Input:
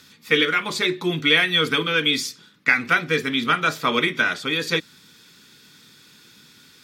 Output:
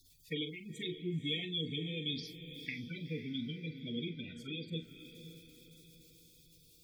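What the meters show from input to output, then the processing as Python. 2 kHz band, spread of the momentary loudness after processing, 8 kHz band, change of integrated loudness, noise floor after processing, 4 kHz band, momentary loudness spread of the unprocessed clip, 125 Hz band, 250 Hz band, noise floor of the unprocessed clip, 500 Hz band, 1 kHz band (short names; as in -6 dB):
-27.5 dB, 21 LU, -25.0 dB, -19.5 dB, -64 dBFS, -17.5 dB, 7 LU, -8.5 dB, -13.0 dB, -52 dBFS, -19.5 dB, under -40 dB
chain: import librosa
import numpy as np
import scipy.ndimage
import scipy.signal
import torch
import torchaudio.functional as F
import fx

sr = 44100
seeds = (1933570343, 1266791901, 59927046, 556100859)

y = fx.quant_dither(x, sr, seeds[0], bits=8, dither='triangular')
y = fx.tone_stack(y, sr, knobs='10-0-1')
y = fx.env_phaser(y, sr, low_hz=170.0, high_hz=1500.0, full_db=-42.0)
y = fx.spec_gate(y, sr, threshold_db=-15, keep='strong')
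y = fx.doubler(y, sr, ms=42.0, db=-11.0)
y = fx.echo_diffused(y, sr, ms=505, feedback_pct=47, wet_db=-11.0)
y = y * librosa.db_to_amplitude(5.5)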